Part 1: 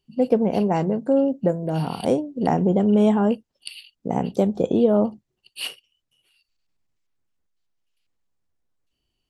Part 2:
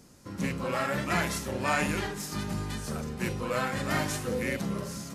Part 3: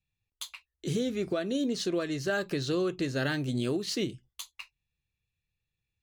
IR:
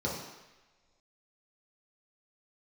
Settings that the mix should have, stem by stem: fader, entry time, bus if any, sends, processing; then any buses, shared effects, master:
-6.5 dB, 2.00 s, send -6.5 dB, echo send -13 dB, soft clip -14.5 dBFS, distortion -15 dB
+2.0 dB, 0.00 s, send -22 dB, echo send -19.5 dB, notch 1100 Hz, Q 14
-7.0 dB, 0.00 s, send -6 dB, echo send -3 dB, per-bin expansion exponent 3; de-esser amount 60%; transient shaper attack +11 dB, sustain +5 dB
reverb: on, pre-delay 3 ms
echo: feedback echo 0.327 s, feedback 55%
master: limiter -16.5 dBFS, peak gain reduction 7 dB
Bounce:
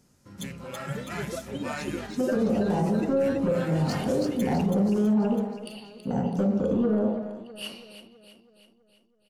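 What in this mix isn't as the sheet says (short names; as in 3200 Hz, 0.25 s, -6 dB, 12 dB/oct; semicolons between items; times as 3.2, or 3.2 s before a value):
stem 2 +2.0 dB -> -7.5 dB; stem 3: send off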